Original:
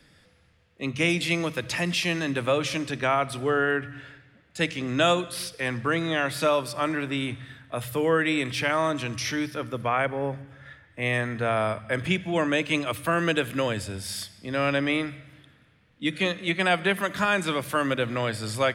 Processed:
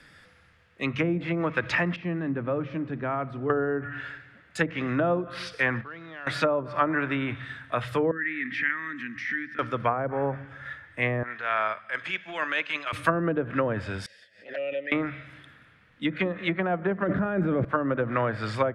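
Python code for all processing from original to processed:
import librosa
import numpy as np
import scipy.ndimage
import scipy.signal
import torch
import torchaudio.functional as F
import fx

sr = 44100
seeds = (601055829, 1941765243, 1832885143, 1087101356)

y = fx.chain(x, sr, fx.law_mismatch(coded='mu'),
    fx.bandpass_q(hz=200.0, q=0.88), at=(1.96, 3.5))
y = fx.chain(y, sr, fx.level_steps(step_db=22),
    fx.sample_gate(floor_db=-52.0),
    fx.air_absorb(metres=260.0), at=(5.81, 6.27))
y = fx.chain(y, sr, fx.double_bandpass(hz=680.0, octaves=2.9),
    fx.pre_swell(db_per_s=62.0), at=(8.11, 9.59))
y = fx.chain(y, sr, fx.highpass(hz=1300.0, slope=6),
    fx.air_absorb(metres=89.0),
    fx.transient(attack_db=-10, sustain_db=-4), at=(11.23, 12.93))
y = fx.chain(y, sr, fx.vowel_filter(vowel='e'),
    fx.env_flanger(rest_ms=11.1, full_db=-29.0),
    fx.pre_swell(db_per_s=140.0), at=(14.06, 14.92))
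y = fx.chain(y, sr, fx.peak_eq(hz=1000.0, db=-9.5, octaves=0.46),
    fx.env_flatten(amount_pct=100), at=(17.02, 17.65))
y = fx.env_lowpass_down(y, sr, base_hz=520.0, full_db=-20.5)
y = fx.peak_eq(y, sr, hz=1500.0, db=9.5, octaves=1.4)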